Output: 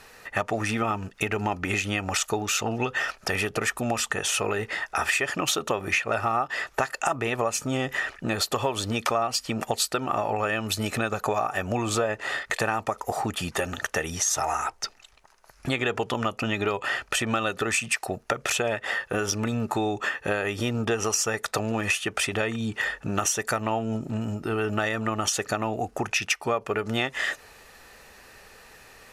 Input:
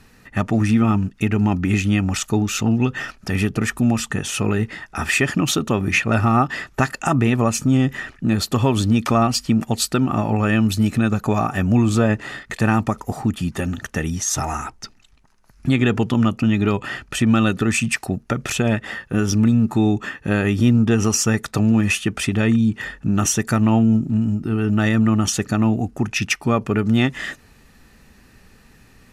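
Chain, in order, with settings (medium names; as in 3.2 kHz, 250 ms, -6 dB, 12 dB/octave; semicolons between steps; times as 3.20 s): resonant low shelf 350 Hz -12.5 dB, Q 1.5; compression 4:1, threshold -28 dBFS, peak gain reduction 13.5 dB; trim +4.5 dB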